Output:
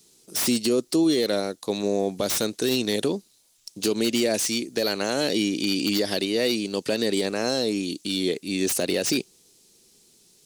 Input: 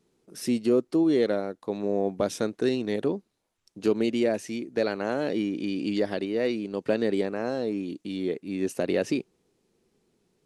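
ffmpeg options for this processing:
-filter_complex "[0:a]acrossover=split=730|3800[s0][s1][s2];[s2]aeval=exprs='0.0562*sin(PI/2*7.08*val(0)/0.0562)':c=same[s3];[s0][s1][s3]amix=inputs=3:normalize=0,alimiter=limit=0.141:level=0:latency=1:release=68,volume=1.5"

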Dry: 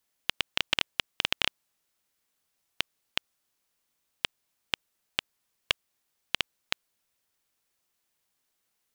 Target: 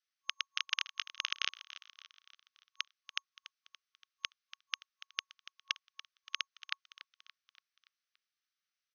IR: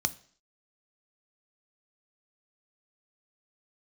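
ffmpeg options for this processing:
-filter_complex "[0:a]aeval=exprs='0.631*(cos(1*acos(clip(val(0)/0.631,-1,1)))-cos(1*PI/2))+0.02*(cos(7*acos(clip(val(0)/0.631,-1,1)))-cos(7*PI/2))+0.141*(cos(8*acos(clip(val(0)/0.631,-1,1)))-cos(8*PI/2))':c=same,asplit=6[s0][s1][s2][s3][s4][s5];[s1]adelay=286,afreqshift=66,volume=0.178[s6];[s2]adelay=572,afreqshift=132,volume=0.0912[s7];[s3]adelay=858,afreqshift=198,volume=0.0462[s8];[s4]adelay=1144,afreqshift=264,volume=0.0237[s9];[s5]adelay=1430,afreqshift=330,volume=0.012[s10];[s0][s6][s7][s8][s9][s10]amix=inputs=6:normalize=0,afftfilt=real='re*between(b*sr/4096,1100,6400)':imag='im*between(b*sr/4096,1100,6400)':win_size=4096:overlap=0.75,volume=0.501"

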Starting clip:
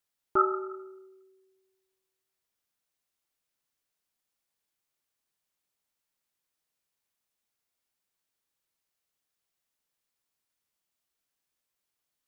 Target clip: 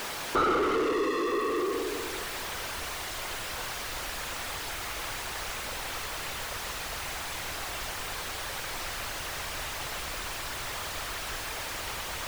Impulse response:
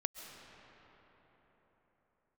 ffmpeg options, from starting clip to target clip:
-filter_complex "[0:a]aeval=exprs='val(0)+0.5*0.0299*sgn(val(0))':c=same,afftfilt=real='hypot(re,im)*cos(2*PI*random(0))':imag='hypot(re,im)*sin(2*PI*random(1))':win_size=512:overlap=0.75,asplit=2[s0][s1];[s1]highpass=f=720:p=1,volume=35.5,asoftclip=type=tanh:threshold=0.158[s2];[s0][s2]amix=inputs=2:normalize=0,lowpass=f=1300:p=1,volume=0.501,asubboost=boost=5.5:cutoff=85"

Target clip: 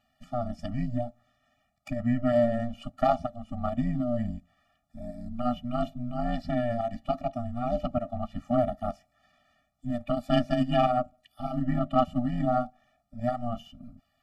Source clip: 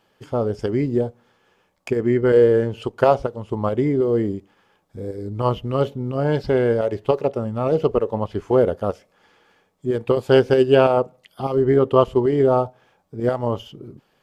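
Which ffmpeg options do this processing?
-af "aeval=exprs='val(0)*sin(2*PI*120*n/s)':c=same,aeval=exprs='0.891*(cos(1*acos(clip(val(0)/0.891,-1,1)))-cos(1*PI/2))+0.0251*(cos(4*acos(clip(val(0)/0.891,-1,1)))-cos(4*PI/2))+0.00562*(cos(5*acos(clip(val(0)/0.891,-1,1)))-cos(5*PI/2))+0.0141*(cos(6*acos(clip(val(0)/0.891,-1,1)))-cos(6*PI/2))+0.02*(cos(7*acos(clip(val(0)/0.891,-1,1)))-cos(7*PI/2))':c=same,afftfilt=real='re*eq(mod(floor(b*sr/1024/280),2),0)':imag='im*eq(mod(floor(b*sr/1024/280),2),0)':win_size=1024:overlap=0.75,volume=0.841"

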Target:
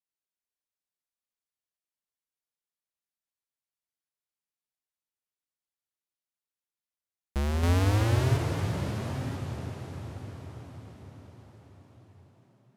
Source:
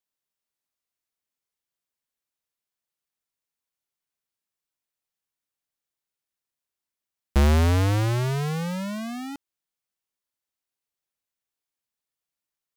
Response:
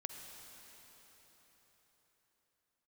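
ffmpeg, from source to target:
-filter_complex "[0:a]asettb=1/sr,asplit=3[s0][s1][s2];[s0]atrim=end=7.634[s3];[s1]atrim=start=7.63:end=8.37,asetpts=PTS-STARTPTS,afade=t=in:d=0.004:c=qsin,afade=t=out:st=0.736:d=0.004:c=qsin,acontrast=77[s4];[s2]atrim=start=8.366[s5];[s3][s4]acrossfade=d=0.004:c1=hsin:c2=qsin[s6];[s6][s5]acrossfade=d=0.004:c1=qsin:c2=hsin[s7];[1:a]atrim=start_sample=2205,asetrate=26901,aresample=44100[s8];[s7][s8]afir=irnorm=-1:irlink=0,volume=0.355"

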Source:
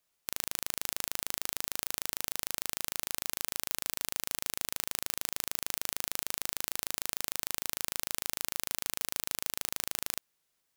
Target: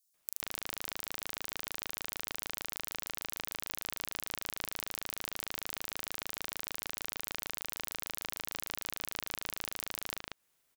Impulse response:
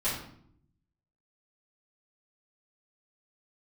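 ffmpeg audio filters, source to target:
-filter_complex "[0:a]acrossover=split=4700[s0][s1];[s0]adelay=140[s2];[s2][s1]amix=inputs=2:normalize=0,acompressor=threshold=0.01:ratio=2.5,volume=1.58"

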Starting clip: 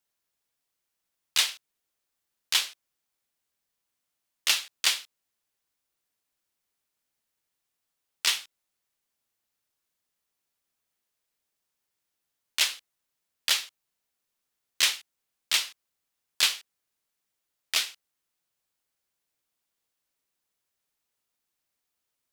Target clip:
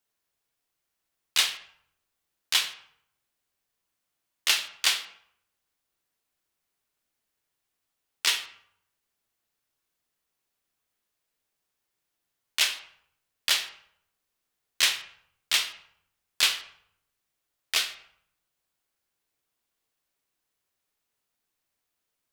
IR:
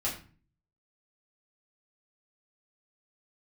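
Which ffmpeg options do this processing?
-filter_complex "[0:a]asplit=2[s0][s1];[1:a]atrim=start_sample=2205,asetrate=24696,aresample=44100,lowpass=4300[s2];[s1][s2]afir=irnorm=-1:irlink=0,volume=0.188[s3];[s0][s3]amix=inputs=2:normalize=0"

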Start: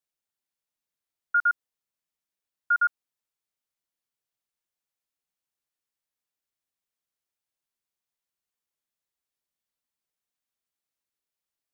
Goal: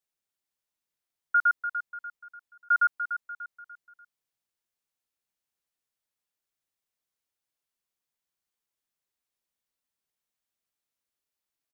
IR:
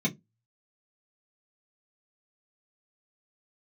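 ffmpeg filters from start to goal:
-af "aecho=1:1:294|588|882|1176:0.335|0.137|0.0563|0.0231"

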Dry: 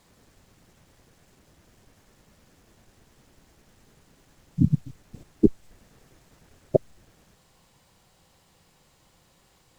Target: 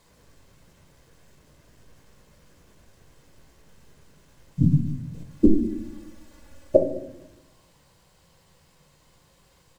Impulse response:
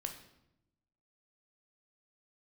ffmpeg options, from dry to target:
-filter_complex "[0:a]asplit=3[s0][s1][s2];[s0]afade=t=out:st=5.29:d=0.02[s3];[s1]aecho=1:1:3.5:0.96,afade=t=in:st=5.29:d=0.02,afade=t=out:st=6.76:d=0.02[s4];[s2]afade=t=in:st=6.76:d=0.02[s5];[s3][s4][s5]amix=inputs=3:normalize=0[s6];[1:a]atrim=start_sample=2205[s7];[s6][s7]afir=irnorm=-1:irlink=0,volume=1.33"

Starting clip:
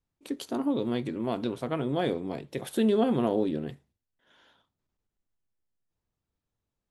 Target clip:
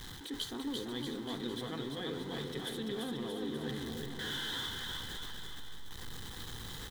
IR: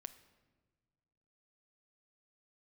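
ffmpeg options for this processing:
-af "aeval=exprs='val(0)+0.5*0.0158*sgn(val(0))':c=same,equalizer=f=3000:w=0.44:g=3.5,areverse,acompressor=threshold=0.02:ratio=5,areverse,superequalizer=8b=0.398:11b=1.58:12b=0.501:13b=2.51,aecho=1:1:340|629|874.6|1083|1261:0.631|0.398|0.251|0.158|0.1,volume=0.596"

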